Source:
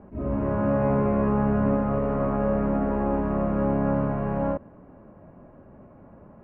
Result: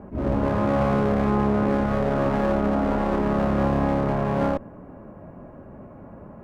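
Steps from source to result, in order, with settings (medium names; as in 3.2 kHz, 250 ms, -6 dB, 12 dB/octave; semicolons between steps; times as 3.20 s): one-sided clip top -34.5 dBFS, bottom -15 dBFS; peak limiter -18.5 dBFS, peak gain reduction 3 dB; trim +6.5 dB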